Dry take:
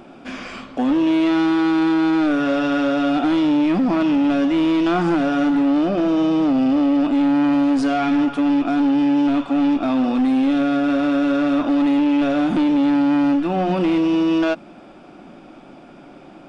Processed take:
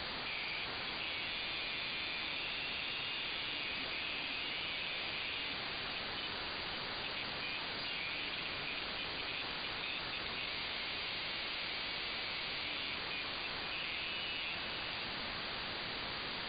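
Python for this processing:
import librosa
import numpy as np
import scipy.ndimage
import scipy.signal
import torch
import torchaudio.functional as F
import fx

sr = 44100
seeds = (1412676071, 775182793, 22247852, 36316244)

y = fx.halfwave_hold(x, sr, at=(10.47, 12.64))
y = scipy.signal.sosfilt(scipy.signal.ellip(4, 1.0, 40, 2200.0, 'highpass', fs=sr, output='sos'), y)
y = fx.transient(y, sr, attack_db=6, sustain_db=10)
y = fx.level_steps(y, sr, step_db=20)
y = fx.quant_dither(y, sr, seeds[0], bits=6, dither='triangular')
y = fx.brickwall_lowpass(y, sr, high_hz=4800.0)
y = y + 10.0 ** (-8.0 / 20.0) * np.pad(y, (int(499 * sr / 1000.0), 0))[:len(y)]
y = fx.env_flatten(y, sr, amount_pct=70)
y = y * librosa.db_to_amplitude(-3.5)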